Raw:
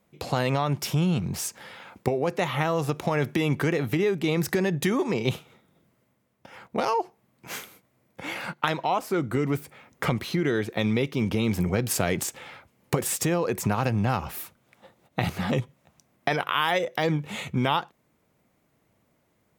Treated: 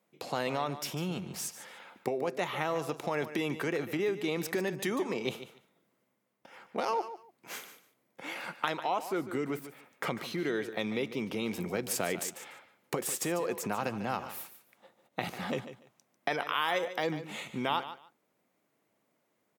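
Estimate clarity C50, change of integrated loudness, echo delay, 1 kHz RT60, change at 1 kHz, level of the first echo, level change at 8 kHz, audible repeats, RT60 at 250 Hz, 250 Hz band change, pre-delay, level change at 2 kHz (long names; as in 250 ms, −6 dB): no reverb audible, −7.5 dB, 146 ms, no reverb audible, −6.0 dB, −12.5 dB, −6.0 dB, 2, no reverb audible, −9.0 dB, no reverb audible, −6.0 dB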